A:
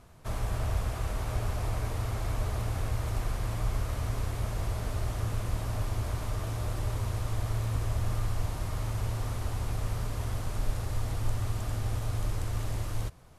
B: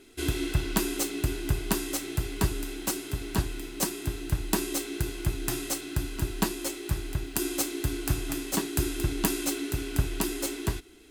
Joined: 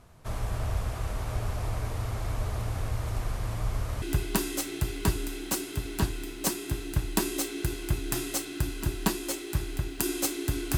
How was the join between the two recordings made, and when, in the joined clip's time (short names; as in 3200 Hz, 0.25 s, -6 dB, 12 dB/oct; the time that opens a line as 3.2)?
A
4.02 switch to B from 1.38 s